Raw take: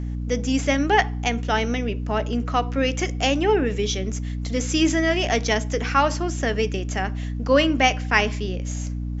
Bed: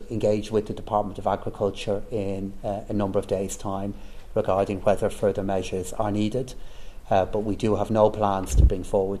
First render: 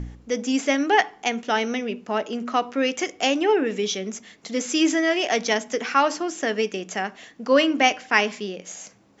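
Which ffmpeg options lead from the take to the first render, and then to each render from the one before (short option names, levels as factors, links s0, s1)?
-af "bandreject=f=60:t=h:w=4,bandreject=f=120:t=h:w=4,bandreject=f=180:t=h:w=4,bandreject=f=240:t=h:w=4,bandreject=f=300:t=h:w=4"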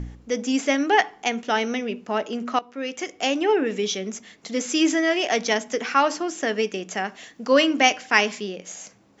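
-filter_complex "[0:a]asettb=1/sr,asplit=3[s0][s1][s2];[s0]atrim=end=7.084[s3];[s1]atrim=start=7.08:end=8.41,asetpts=PTS-STARTPTS,afade=t=in:d=0.004:c=qsin,afade=t=out:st=1.326:d=0.004:c=qsin,highshelf=f=4600:g=6.5[s4];[s2]atrim=start=8.406[s5];[s3][s4]acrossfade=d=0.004:c1=hsin:c2=qsin[s6];[s6][s5]acrossfade=d=0.004:c1=qsin:c2=hsin,asplit=2[s7][s8];[s7]atrim=end=2.59,asetpts=PTS-STARTPTS,afade=t=out:st=2.586:d=0.004:c=hsin:silence=0.16788[s9];[s8]atrim=start=2.59,asetpts=PTS-STARTPTS,afade=t=in:d=1.21:c=qsin:silence=0.16788[s10];[s9][s10]concat=n=2:v=0:a=1"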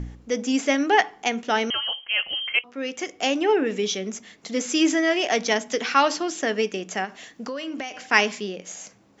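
-filter_complex "[0:a]asettb=1/sr,asplit=3[s0][s1][s2];[s0]atrim=end=1.704[s3];[s1]atrim=start=1.7:end=2.64,asetpts=PTS-STARTPTS,afade=t=in:d=0.004:c=qsin,afade=t=out:st=0.936:d=0.004:c=qsin,lowpass=f=2900:t=q:w=0.5098,lowpass=f=2900:t=q:w=0.6013,lowpass=f=2900:t=q:w=0.9,lowpass=f=2900:t=q:w=2.563,afreqshift=-3400[s4];[s2]atrim=start=2.636[s5];[s3][s4]acrossfade=d=0.004:c1=hsin:c2=qsin[s6];[s6][s5]acrossfade=d=0.004:c1=qsin:c2=hsin,asettb=1/sr,asplit=3[s7][s8][s9];[s7]atrim=end=5.704[s10];[s8]atrim=start=5.7:end=6.41,asetpts=PTS-STARTPTS,afade=t=in:d=0.004:c=qsin,afade=t=out:st=0.706:d=0.004:c=qsin,equalizer=f=3900:t=o:w=0.98:g=7[s11];[s9]atrim=start=6.406[s12];[s10][s11]acrossfade=d=0.004:c1=hsin:c2=qsin[s13];[s13][s12]acrossfade=d=0.004:c1=qsin:c2=hsin,asplit=3[s14][s15][s16];[s14]afade=t=out:st=7.04:d=0.02[s17];[s15]acompressor=threshold=0.0447:ratio=20:attack=3.2:release=140:knee=1:detection=peak,afade=t=in:st=7.04:d=0.02,afade=t=out:st=7.98:d=0.02[s18];[s16]afade=t=in:st=7.98:d=0.02[s19];[s17][s18][s19]amix=inputs=3:normalize=0"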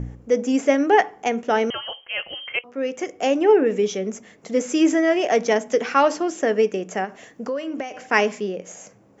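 -af "equalizer=f=125:t=o:w=1:g=6,equalizer=f=500:t=o:w=1:g=7,equalizer=f=4000:t=o:w=1:g=-10"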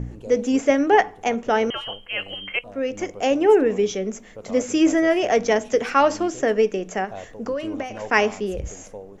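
-filter_complex "[1:a]volume=0.168[s0];[0:a][s0]amix=inputs=2:normalize=0"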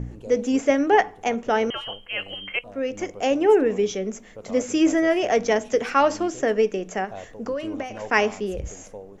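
-af "volume=0.841"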